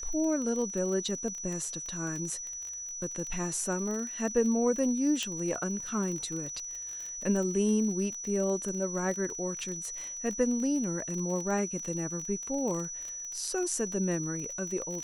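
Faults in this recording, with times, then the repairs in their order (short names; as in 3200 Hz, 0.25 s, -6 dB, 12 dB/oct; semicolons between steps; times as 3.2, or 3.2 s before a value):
crackle 35/s -35 dBFS
tone 5900 Hz -37 dBFS
5.23 pop -18 dBFS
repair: de-click; notch 5900 Hz, Q 30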